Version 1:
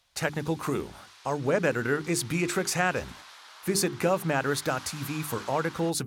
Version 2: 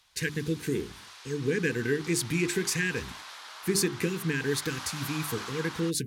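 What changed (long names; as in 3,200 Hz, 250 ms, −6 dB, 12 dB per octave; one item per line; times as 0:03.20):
speech: add linear-phase brick-wall band-stop 500–1,500 Hz
background +4.5 dB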